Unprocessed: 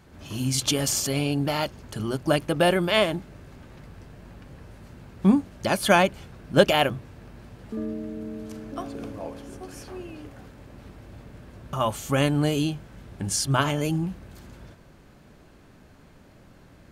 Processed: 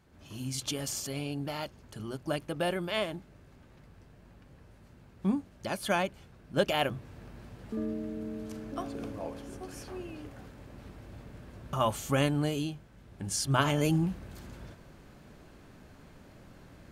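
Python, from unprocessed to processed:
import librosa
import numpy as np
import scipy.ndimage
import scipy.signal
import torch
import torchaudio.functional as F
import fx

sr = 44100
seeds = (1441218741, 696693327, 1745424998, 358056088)

y = fx.gain(x, sr, db=fx.line((6.57, -10.5), (7.15, -3.0), (12.0, -3.0), (12.93, -11.0), (13.84, -1.0)))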